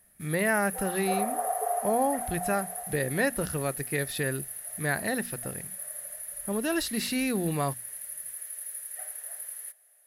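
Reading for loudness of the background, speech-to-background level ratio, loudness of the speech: -34.5 LUFS, 4.0 dB, -30.5 LUFS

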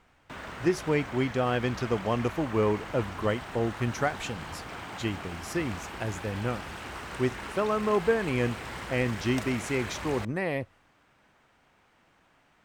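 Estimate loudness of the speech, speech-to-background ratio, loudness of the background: -30.0 LUFS, 9.0 dB, -39.0 LUFS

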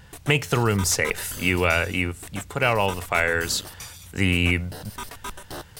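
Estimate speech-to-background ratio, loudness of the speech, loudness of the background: 15.5 dB, -23.0 LUFS, -38.5 LUFS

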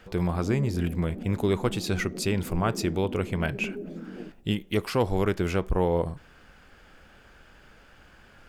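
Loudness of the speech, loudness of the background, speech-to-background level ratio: -28.0 LUFS, -38.5 LUFS, 10.5 dB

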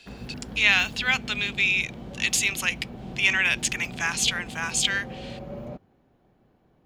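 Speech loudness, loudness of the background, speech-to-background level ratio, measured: -23.5 LUFS, -39.5 LUFS, 16.0 dB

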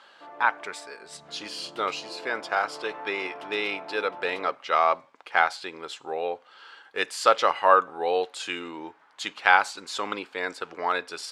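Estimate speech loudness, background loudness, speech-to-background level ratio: -26.5 LUFS, -43.0 LUFS, 16.5 dB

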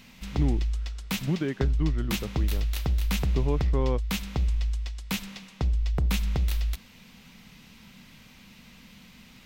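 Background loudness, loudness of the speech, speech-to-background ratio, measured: -29.5 LUFS, -32.5 LUFS, -3.0 dB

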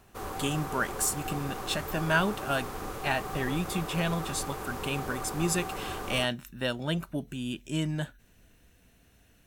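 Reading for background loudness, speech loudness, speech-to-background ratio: -37.5 LUFS, -31.5 LUFS, 6.0 dB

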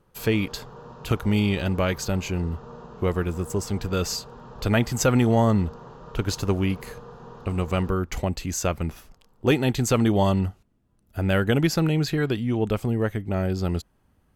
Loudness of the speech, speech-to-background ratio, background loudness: -25.0 LUFS, 18.5 dB, -43.5 LUFS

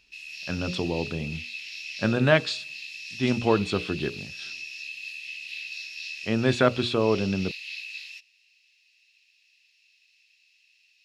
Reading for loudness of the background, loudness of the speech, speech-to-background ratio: -36.0 LUFS, -26.0 LUFS, 10.0 dB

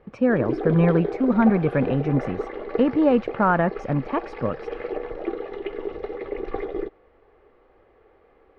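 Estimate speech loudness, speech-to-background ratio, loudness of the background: -22.0 LUFS, 9.5 dB, -31.5 LUFS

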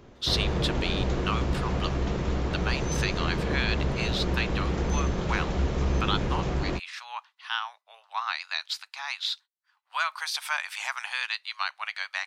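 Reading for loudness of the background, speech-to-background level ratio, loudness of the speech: -29.0 LUFS, -3.0 dB, -32.0 LUFS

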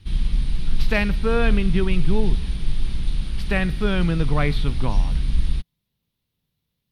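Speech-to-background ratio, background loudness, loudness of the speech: 3.0 dB, -27.5 LUFS, -24.5 LUFS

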